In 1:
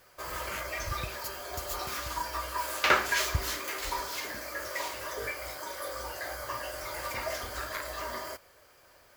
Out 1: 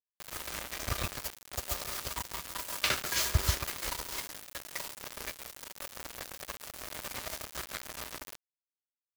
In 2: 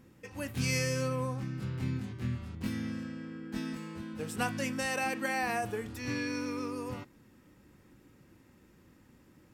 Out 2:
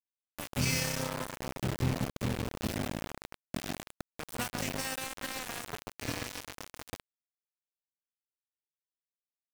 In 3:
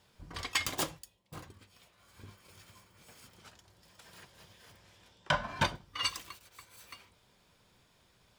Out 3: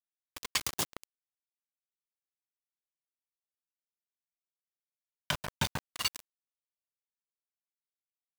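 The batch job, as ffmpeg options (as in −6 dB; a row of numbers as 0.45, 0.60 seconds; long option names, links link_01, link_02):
-filter_complex "[0:a]asplit=2[link_01][link_02];[link_02]adelay=136,lowpass=frequency=1100:poles=1,volume=-4dB,asplit=2[link_03][link_04];[link_04]adelay=136,lowpass=frequency=1100:poles=1,volume=0.32,asplit=2[link_05][link_06];[link_06]adelay=136,lowpass=frequency=1100:poles=1,volume=0.32,asplit=2[link_07][link_08];[link_08]adelay=136,lowpass=frequency=1100:poles=1,volume=0.32[link_09];[link_01][link_03][link_05][link_07][link_09]amix=inputs=5:normalize=0,acrossover=split=200|3000[link_10][link_11][link_12];[link_11]acompressor=threshold=-37dB:ratio=5[link_13];[link_10][link_13][link_12]amix=inputs=3:normalize=0,aeval=exprs='val(0)*gte(abs(val(0)),0.0266)':channel_layout=same,volume=3dB"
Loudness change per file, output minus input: −2.5, −1.0, −0.5 LU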